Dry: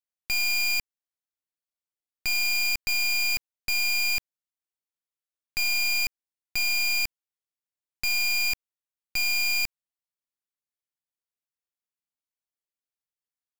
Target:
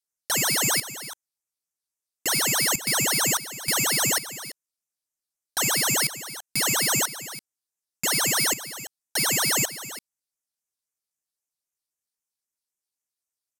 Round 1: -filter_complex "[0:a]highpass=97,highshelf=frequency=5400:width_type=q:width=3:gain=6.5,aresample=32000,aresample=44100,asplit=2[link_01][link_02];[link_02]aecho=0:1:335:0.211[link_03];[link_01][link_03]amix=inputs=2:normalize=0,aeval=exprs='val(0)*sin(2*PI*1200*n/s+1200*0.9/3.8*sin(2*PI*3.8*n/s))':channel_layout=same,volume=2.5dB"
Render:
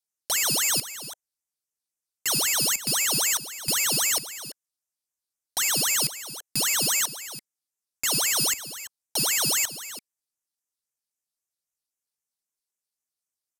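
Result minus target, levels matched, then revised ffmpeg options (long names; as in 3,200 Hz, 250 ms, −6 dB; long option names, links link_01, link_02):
125 Hz band −4.0 dB
-filter_complex "[0:a]highshelf=frequency=5400:width_type=q:width=3:gain=6.5,aresample=32000,aresample=44100,asplit=2[link_01][link_02];[link_02]aecho=0:1:335:0.211[link_03];[link_01][link_03]amix=inputs=2:normalize=0,aeval=exprs='val(0)*sin(2*PI*1200*n/s+1200*0.9/3.8*sin(2*PI*3.8*n/s))':channel_layout=same,volume=2.5dB"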